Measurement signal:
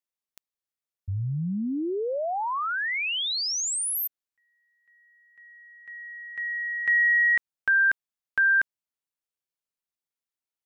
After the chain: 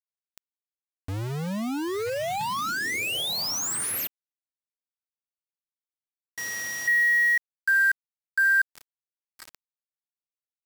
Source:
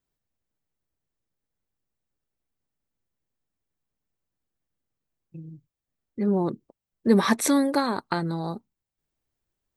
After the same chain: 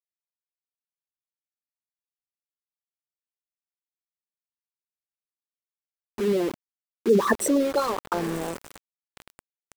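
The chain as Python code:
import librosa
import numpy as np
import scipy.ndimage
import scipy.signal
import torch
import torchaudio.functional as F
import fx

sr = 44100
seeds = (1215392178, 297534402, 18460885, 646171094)

y = fx.envelope_sharpen(x, sr, power=3.0)
y = fx.echo_diffused(y, sr, ms=1073, feedback_pct=67, wet_db=-15.5)
y = np.where(np.abs(y) >= 10.0 ** (-29.5 / 20.0), y, 0.0)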